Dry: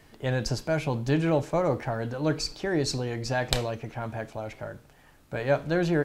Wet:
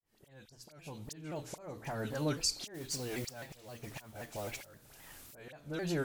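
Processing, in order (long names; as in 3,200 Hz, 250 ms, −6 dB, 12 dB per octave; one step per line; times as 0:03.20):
fade in at the beginning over 1.92 s
first-order pre-emphasis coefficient 0.8
mains-hum notches 60/120/180/240/300 Hz
dynamic equaliser 210 Hz, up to +3 dB, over −49 dBFS, Q 0.84
downward compressor 2 to 1, threshold −52 dBFS, peak gain reduction 14.5 dB
volume swells 537 ms
all-pass dispersion highs, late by 45 ms, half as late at 1,800 Hz
0:02.74–0:05.34: noise that follows the level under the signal 12 dB
pitch modulation by a square or saw wave saw down 3.8 Hz, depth 160 cents
level +14 dB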